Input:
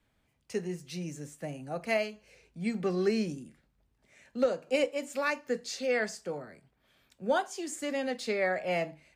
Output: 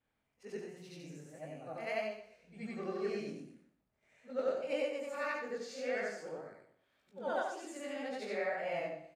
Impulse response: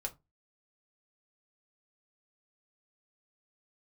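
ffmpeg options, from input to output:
-af "afftfilt=real='re':imag='-im':win_size=8192:overlap=0.75,equalizer=f=830:w=0.33:g=8.5,bandreject=f=45.82:t=h:w=4,bandreject=f=91.64:t=h:w=4,bandreject=f=137.46:t=h:w=4,bandreject=f=183.28:t=h:w=4,bandreject=f=229.1:t=h:w=4,bandreject=f=274.92:t=h:w=4,bandreject=f=320.74:t=h:w=4,bandreject=f=366.56:t=h:w=4,bandreject=f=412.38:t=h:w=4,bandreject=f=458.2:t=h:w=4,bandreject=f=504.02:t=h:w=4,bandreject=f=549.84:t=h:w=4,bandreject=f=595.66:t=h:w=4,bandreject=f=641.48:t=h:w=4,bandreject=f=687.3:t=h:w=4,bandreject=f=733.12:t=h:w=4,bandreject=f=778.94:t=h:w=4,bandreject=f=824.76:t=h:w=4,bandreject=f=870.58:t=h:w=4,bandreject=f=916.4:t=h:w=4,bandreject=f=962.22:t=h:w=4,bandreject=f=1008.04:t=h:w=4,bandreject=f=1053.86:t=h:w=4,flanger=delay=19:depth=7.3:speed=1.8,aecho=1:1:122|244|366:0.211|0.0592|0.0166,volume=0.501"

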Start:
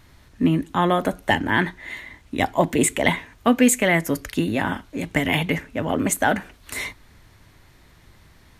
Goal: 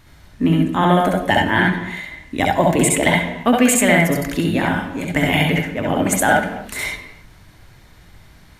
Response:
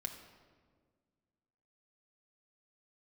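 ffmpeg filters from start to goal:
-filter_complex "[0:a]asplit=2[s0][s1];[1:a]atrim=start_sample=2205,afade=t=out:st=0.34:d=0.01,atrim=end_sample=15435,adelay=66[s2];[s1][s2]afir=irnorm=-1:irlink=0,volume=1.26[s3];[s0][s3]amix=inputs=2:normalize=0,volume=1.19"

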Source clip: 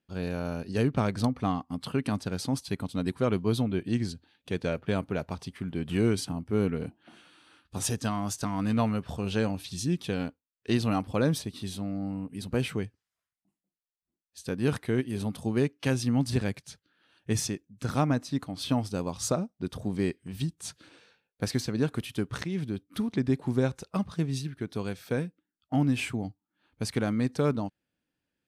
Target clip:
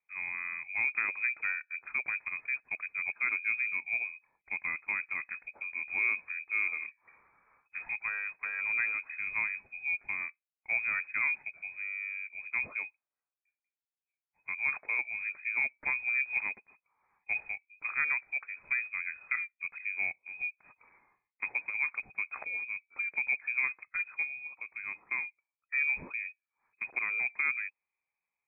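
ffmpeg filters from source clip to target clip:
-filter_complex "[0:a]asplit=3[s0][s1][s2];[s0]afade=t=out:st=24.27:d=0.02[s3];[s1]acompressor=threshold=0.02:ratio=2.5,afade=t=in:st=24.27:d=0.02,afade=t=out:st=24.82:d=0.02[s4];[s2]afade=t=in:st=24.82:d=0.02[s5];[s3][s4][s5]amix=inputs=3:normalize=0,lowpass=f=2200:t=q:w=0.5098,lowpass=f=2200:t=q:w=0.6013,lowpass=f=2200:t=q:w=0.9,lowpass=f=2200:t=q:w=2.563,afreqshift=-2600,volume=0.531"

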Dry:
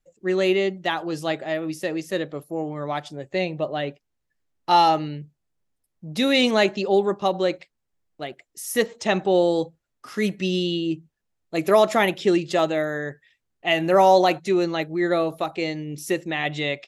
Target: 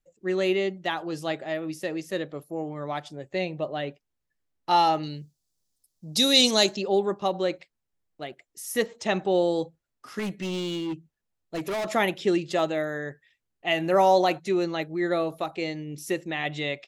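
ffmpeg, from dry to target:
-filter_complex "[0:a]asettb=1/sr,asplit=3[s0][s1][s2];[s0]atrim=end=5.034[s3];[s1]atrim=start=5.03:end=6.77,asetpts=PTS-STARTPTS,afade=t=in:d=0.004:c=qsin,afade=t=out:st=1.736:d=0.004:c=qsin,highshelf=f=3300:t=q:w=1.5:g=13[s4];[s2]atrim=start=6.766[s5];[s3][s4]acrossfade=d=0.004:c1=hsin:c2=qsin[s6];[s6][s5]acrossfade=d=0.004:c1=qsin:c2=hsin,asettb=1/sr,asplit=3[s7][s8][s9];[s7]atrim=end=10.194[s10];[s8]atrim=start=10.19:end=11.87,asetpts=PTS-STARTPTS,afade=t=in:d=0.004:c=qsin,afade=t=out:st=1.676:d=0.004:c=qsin,asoftclip=type=hard:threshold=0.0708[s11];[s9]atrim=start=11.866[s12];[s10][s11]acrossfade=d=0.004:c1=hsin:c2=qsin[s13];[s13][s12]acrossfade=d=0.004:c1=qsin:c2=hsin,volume=0.631"

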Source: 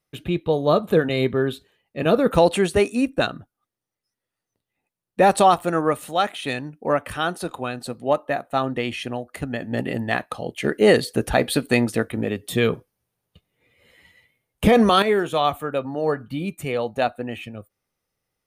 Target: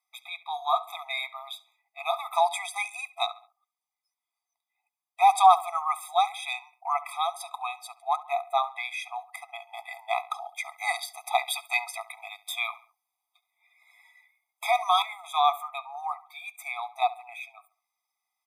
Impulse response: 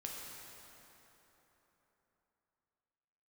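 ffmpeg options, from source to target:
-filter_complex "[0:a]asplit=2[s0][s1];[s1]adelay=69,lowpass=f=3600:p=1,volume=0.133,asplit=2[s2][s3];[s3]adelay=69,lowpass=f=3600:p=1,volume=0.42,asplit=2[s4][s5];[s5]adelay=69,lowpass=f=3600:p=1,volume=0.42[s6];[s0][s2][s4][s6]amix=inputs=4:normalize=0,asplit=3[s7][s8][s9];[s7]afade=t=out:st=14.66:d=0.02[s10];[s8]agate=range=0.0224:threshold=0.251:ratio=3:detection=peak,afade=t=in:st=14.66:d=0.02,afade=t=out:st=15.23:d=0.02[s11];[s9]afade=t=in:st=15.23:d=0.02[s12];[s10][s11][s12]amix=inputs=3:normalize=0,afftfilt=real='re*eq(mod(floor(b*sr/1024/650),2),1)':imag='im*eq(mod(floor(b*sr/1024/650),2),1)':win_size=1024:overlap=0.75"

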